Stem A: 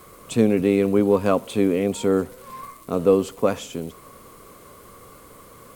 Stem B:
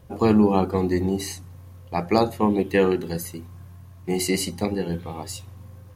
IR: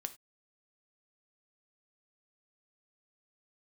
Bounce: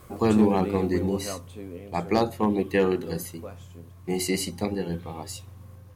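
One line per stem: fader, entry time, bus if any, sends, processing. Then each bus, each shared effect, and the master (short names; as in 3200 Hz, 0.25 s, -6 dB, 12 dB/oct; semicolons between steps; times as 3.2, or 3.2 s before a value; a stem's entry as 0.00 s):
0.0 dB, 0.00 s, no send, resonator 86 Hz, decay 0.25 s, harmonics all, mix 70%; auto duck -15 dB, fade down 1.85 s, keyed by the second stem
-3.0 dB, 0.00 s, no send, dry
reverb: off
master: hard clip -11.5 dBFS, distortion -26 dB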